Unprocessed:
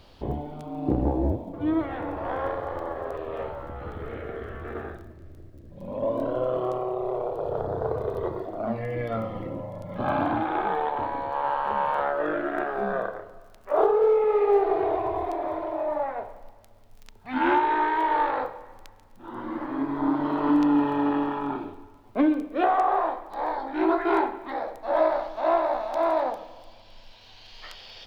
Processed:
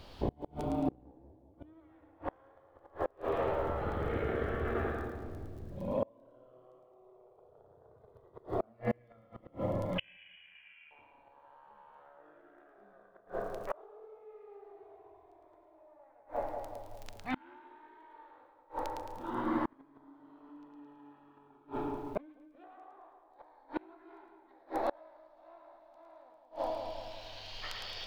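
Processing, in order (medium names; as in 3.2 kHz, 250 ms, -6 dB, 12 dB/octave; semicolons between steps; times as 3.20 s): 9.98–10.91 s: frequency inversion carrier 3.2 kHz; two-band feedback delay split 970 Hz, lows 189 ms, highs 109 ms, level -4.5 dB; inverted gate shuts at -20 dBFS, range -34 dB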